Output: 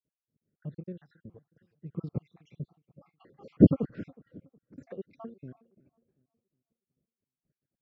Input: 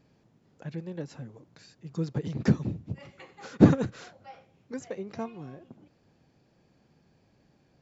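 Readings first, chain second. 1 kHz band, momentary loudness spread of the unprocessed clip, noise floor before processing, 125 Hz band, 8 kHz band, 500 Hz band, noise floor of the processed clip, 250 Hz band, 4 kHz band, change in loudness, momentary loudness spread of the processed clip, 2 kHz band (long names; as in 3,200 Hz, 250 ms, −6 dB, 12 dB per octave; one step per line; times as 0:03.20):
below −10 dB, 25 LU, −66 dBFS, −3.5 dB, can't be measured, −2.5 dB, below −85 dBFS, −1.5 dB, below −15 dB, +1.5 dB, 23 LU, below −15 dB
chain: time-frequency cells dropped at random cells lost 64%
downward expander −53 dBFS
low-pass filter 1,600 Hz 12 dB per octave
parametric band 910 Hz −12 dB 0.56 octaves
on a send: feedback echo with a low-pass in the loop 366 ms, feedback 40%, low-pass 1,200 Hz, level −23 dB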